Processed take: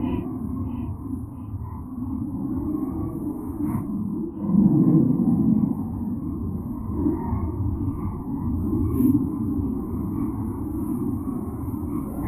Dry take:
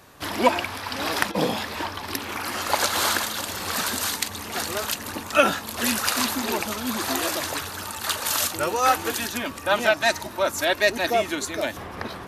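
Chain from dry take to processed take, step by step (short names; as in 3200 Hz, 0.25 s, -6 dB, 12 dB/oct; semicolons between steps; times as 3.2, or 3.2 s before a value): AGC gain up to 11.5 dB; Chebyshev band-stop 1100–8900 Hz, order 5; bell 7300 Hz -10.5 dB 1.4 oct; on a send: tape echo 0.117 s, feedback 38%, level -11 dB, low-pass 2400 Hz; on the sum: added harmonics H 2 -23 dB, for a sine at -2.5 dBFS; EQ curve 290 Hz 0 dB, 510 Hz -29 dB, 1300 Hz -20 dB, 2300 Hz +4 dB, 3700 Hz +2 dB, 6500 Hz -21 dB, 11000 Hz -25 dB; Paulstretch 5.7×, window 0.05 s, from 0.57; gain +8.5 dB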